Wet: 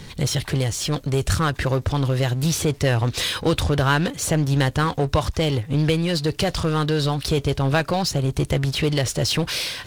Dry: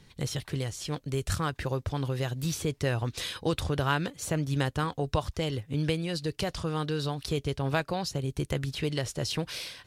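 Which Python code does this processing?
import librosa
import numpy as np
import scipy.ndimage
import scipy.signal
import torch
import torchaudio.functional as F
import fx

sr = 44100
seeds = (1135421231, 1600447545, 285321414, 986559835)

y = fx.power_curve(x, sr, exponent=0.7)
y = fx.doppler_dist(y, sr, depth_ms=0.11)
y = y * librosa.db_to_amplitude(5.5)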